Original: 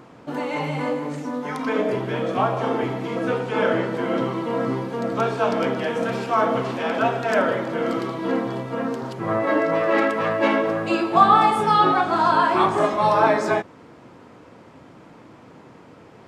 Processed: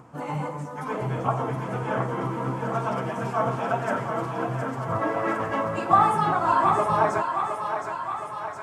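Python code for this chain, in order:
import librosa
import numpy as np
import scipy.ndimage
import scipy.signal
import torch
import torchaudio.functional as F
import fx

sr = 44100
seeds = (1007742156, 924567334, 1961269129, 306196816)

p1 = fx.graphic_eq(x, sr, hz=(125, 250, 500, 1000, 2000, 4000, 8000), db=(7, -5, -4, 4, -4, -11, 4))
p2 = fx.stretch_vocoder_free(p1, sr, factor=0.53)
y = p2 + fx.echo_thinned(p2, sr, ms=716, feedback_pct=68, hz=480.0, wet_db=-6.0, dry=0)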